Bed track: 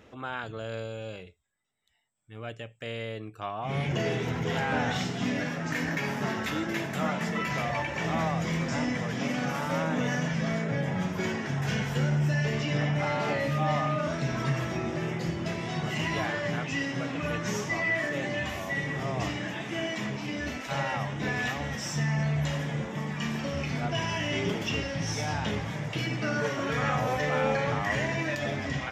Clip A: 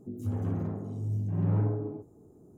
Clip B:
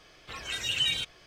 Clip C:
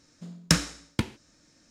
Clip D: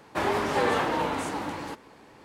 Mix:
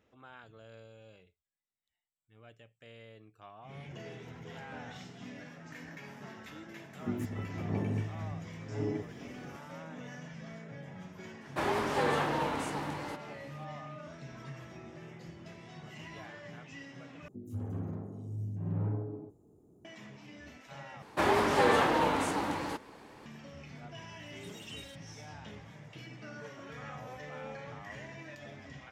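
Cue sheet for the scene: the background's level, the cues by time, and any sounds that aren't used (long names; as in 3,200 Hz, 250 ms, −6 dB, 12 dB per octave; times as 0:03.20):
bed track −17 dB
0:07.00: mix in A −0.5 dB + compressor whose output falls as the input rises −35 dBFS, ratio −0.5
0:11.41: mix in D −5 dB
0:17.28: overwrite with A −6.5 dB
0:21.02: overwrite with D −0.5 dB
0:23.91: mix in B −15.5 dB + first difference
not used: C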